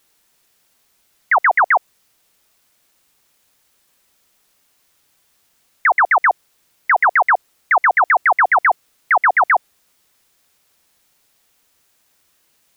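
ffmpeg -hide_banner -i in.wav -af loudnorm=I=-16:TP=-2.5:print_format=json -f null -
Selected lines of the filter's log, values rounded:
"input_i" : "-15.3",
"input_tp" : "-8.3",
"input_lra" : "5.7",
"input_thresh" : "-30.4",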